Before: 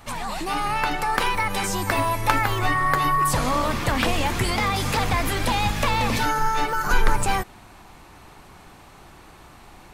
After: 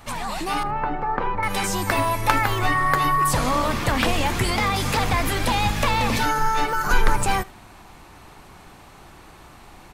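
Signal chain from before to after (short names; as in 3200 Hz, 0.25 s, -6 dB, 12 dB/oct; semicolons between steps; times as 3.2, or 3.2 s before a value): 0.63–1.43 LPF 1100 Hz 12 dB/oct; echo 77 ms -22 dB; gain +1 dB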